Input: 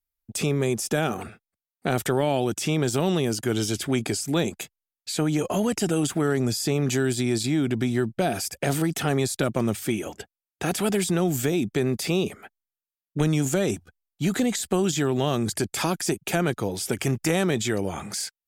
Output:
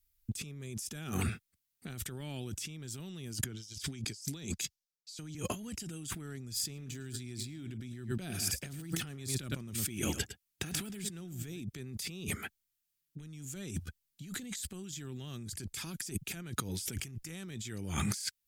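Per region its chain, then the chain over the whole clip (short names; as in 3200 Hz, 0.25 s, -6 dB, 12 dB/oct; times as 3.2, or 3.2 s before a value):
3.44–5.35 bell 5300 Hz +12 dB 1.1 oct + three-band expander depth 100%
6.53–11.62 de-esser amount 60% + echo 0.107 s -14.5 dB
whole clip: passive tone stack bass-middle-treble 6-0-2; negative-ratio compressor -55 dBFS, ratio -1; gain +14 dB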